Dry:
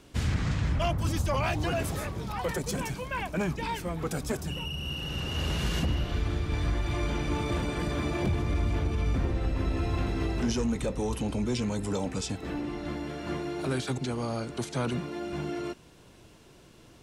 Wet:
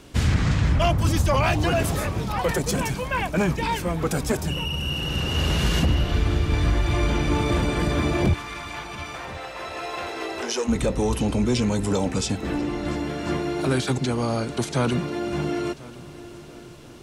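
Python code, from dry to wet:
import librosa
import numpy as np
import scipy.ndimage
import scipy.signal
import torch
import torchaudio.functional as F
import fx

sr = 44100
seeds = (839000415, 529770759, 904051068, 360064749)

y = fx.highpass(x, sr, hz=fx.line((8.33, 930.0), (10.67, 360.0)), slope=24, at=(8.33, 10.67), fade=0.02)
y = fx.echo_heads(y, sr, ms=346, heads='second and third', feedback_pct=44, wet_db=-21)
y = y * 10.0 ** (7.5 / 20.0)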